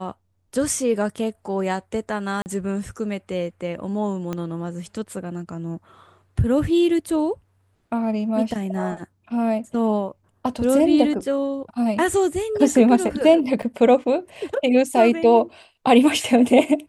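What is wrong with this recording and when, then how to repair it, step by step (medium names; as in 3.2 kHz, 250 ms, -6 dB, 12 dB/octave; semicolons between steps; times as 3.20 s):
2.42–2.46 s: dropout 39 ms
4.33 s: pop -15 dBFS
13.62–13.63 s: dropout 6.7 ms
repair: de-click; interpolate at 2.42 s, 39 ms; interpolate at 13.62 s, 6.7 ms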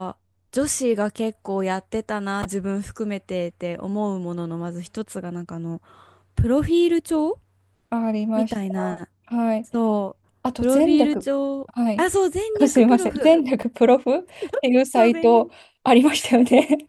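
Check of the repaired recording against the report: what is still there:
4.33 s: pop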